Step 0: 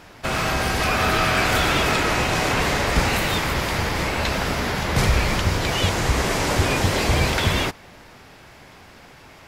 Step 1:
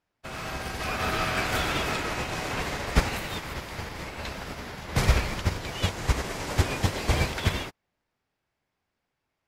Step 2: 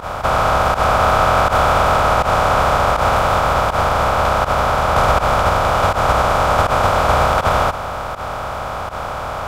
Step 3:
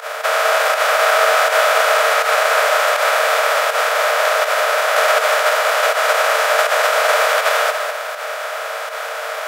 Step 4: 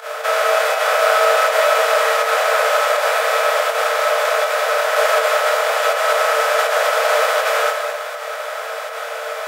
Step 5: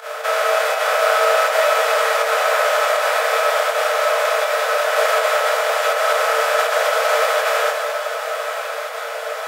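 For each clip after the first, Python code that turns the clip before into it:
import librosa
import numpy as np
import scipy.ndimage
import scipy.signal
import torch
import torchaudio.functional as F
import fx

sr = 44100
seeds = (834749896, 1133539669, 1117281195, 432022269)

y1 = fx.upward_expand(x, sr, threshold_db=-38.0, expansion=2.5)
y2 = fx.bin_compress(y1, sr, power=0.2)
y2 = fx.band_shelf(y2, sr, hz=850.0, db=15.5, octaves=1.7)
y2 = fx.volume_shaper(y2, sr, bpm=81, per_beat=1, depth_db=-18, release_ms=77.0, shape='fast start')
y2 = y2 * librosa.db_to_amplitude(-3.5)
y3 = fx.envelope_flatten(y2, sr, power=0.6)
y3 = scipy.signal.sosfilt(scipy.signal.cheby1(6, 9, 440.0, 'highpass', fs=sr, output='sos'), y3)
y3 = y3 + 10.0 ** (-7.0 / 20.0) * np.pad(y3, (int(204 * sr / 1000.0), 0))[:len(y3)]
y3 = y3 * librosa.db_to_amplitude(4.0)
y4 = fx.room_shoebox(y3, sr, seeds[0], volume_m3=150.0, walls='furnished', distance_m=1.5)
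y4 = y4 * librosa.db_to_amplitude(-5.0)
y5 = fx.echo_diffused(y4, sr, ms=1038, feedback_pct=43, wet_db=-10.0)
y5 = y5 * librosa.db_to_amplitude(-1.5)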